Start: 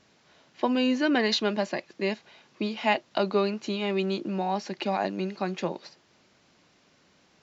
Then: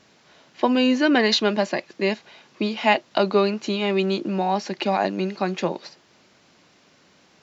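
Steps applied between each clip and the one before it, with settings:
low-shelf EQ 70 Hz −8 dB
level +6 dB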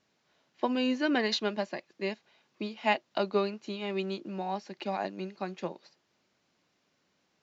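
expander for the loud parts 1.5 to 1, over −33 dBFS
level −8 dB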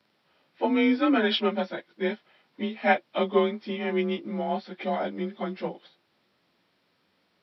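partials spread apart or drawn together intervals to 92%
level +7 dB

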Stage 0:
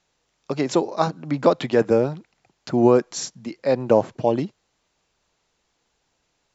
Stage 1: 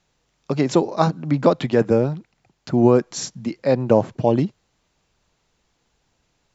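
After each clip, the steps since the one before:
in parallel at +3 dB: speech leveller within 4 dB 0.5 s
on the sum: bass and treble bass +7 dB, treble −1 dB
level −7 dB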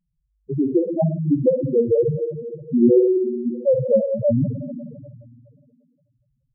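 spring reverb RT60 2.2 s, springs 51/59 ms, chirp 40 ms, DRR 2.5 dB
spectral peaks only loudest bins 2
level +3.5 dB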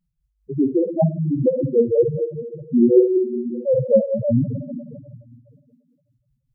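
shaped tremolo triangle 5.1 Hz, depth 65%
level +3.5 dB

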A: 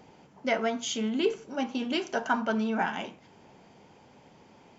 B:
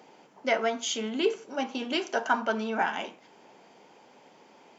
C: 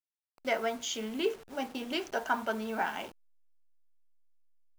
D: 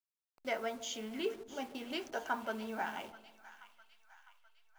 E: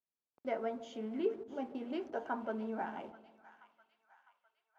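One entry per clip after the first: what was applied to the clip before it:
high-pass filter 310 Hz 12 dB per octave; level +2 dB
hold until the input has moved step −41.5 dBFS; level −4.5 dB
echo with a time of its own for lows and highs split 990 Hz, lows 150 ms, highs 655 ms, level −15 dB; level −6 dB
resonant band-pass 300 Hz, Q 0.58; level +3.5 dB

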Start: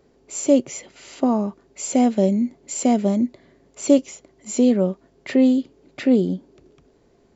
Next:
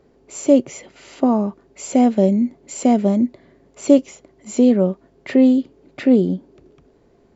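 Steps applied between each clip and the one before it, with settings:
high-shelf EQ 3,500 Hz −8 dB
level +3 dB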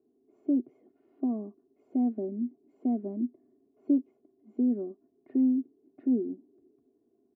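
four-pole ladder band-pass 260 Hz, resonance 45%
comb filter 2.8 ms, depth 85%
level −6 dB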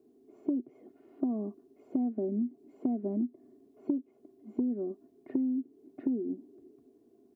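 downward compressor 20 to 1, threshold −35 dBFS, peak gain reduction 16 dB
level +7.5 dB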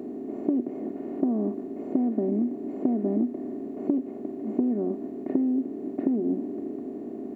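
compressor on every frequency bin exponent 0.4
level +3 dB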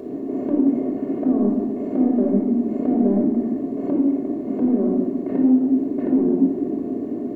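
in parallel at −8 dB: soft clipping −24.5 dBFS, distortion −11 dB
on the sum: convolution reverb RT60 0.95 s, pre-delay 24 ms, DRR 1 dB

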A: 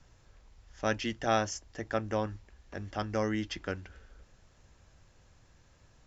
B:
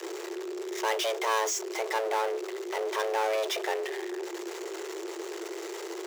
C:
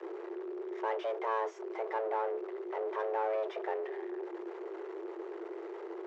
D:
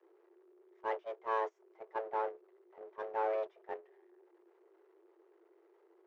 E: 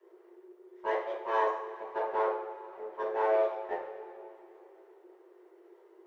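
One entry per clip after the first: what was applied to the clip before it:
power curve on the samples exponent 0.35; frequency shifter +330 Hz; level −6 dB
low-pass filter 1,300 Hz 12 dB per octave; level −4 dB
noise gate −32 dBFS, range −24 dB
coupled-rooms reverb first 0.48 s, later 3.2 s, from −17 dB, DRR −6.5 dB

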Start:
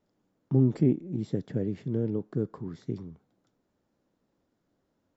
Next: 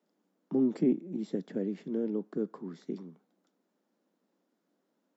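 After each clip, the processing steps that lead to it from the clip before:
Butterworth high-pass 180 Hz 48 dB per octave
level −1.5 dB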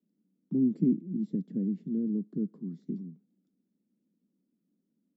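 drawn EQ curve 210 Hz 0 dB, 810 Hz −30 dB, 1,600 Hz −28 dB, 3,900 Hz −22 dB
level +6.5 dB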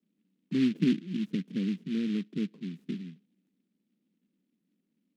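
short delay modulated by noise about 2,600 Hz, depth 0.069 ms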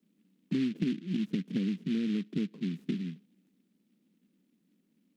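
downward compressor 6 to 1, threshold −34 dBFS, peak gain reduction 12.5 dB
level +6 dB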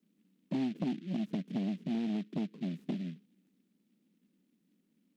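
saturating transformer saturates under 350 Hz
level −2 dB

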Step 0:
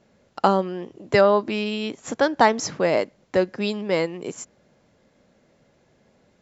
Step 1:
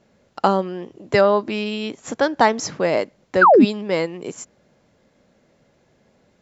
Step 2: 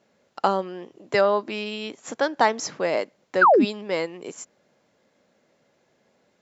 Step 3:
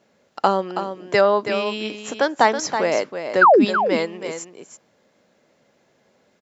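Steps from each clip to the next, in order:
sound drawn into the spectrogram fall, 0:03.41–0:03.65, 200–1,700 Hz −11 dBFS; level +1 dB
high-pass filter 340 Hz 6 dB per octave; level −3 dB
single-tap delay 325 ms −8.5 dB; level +3.5 dB

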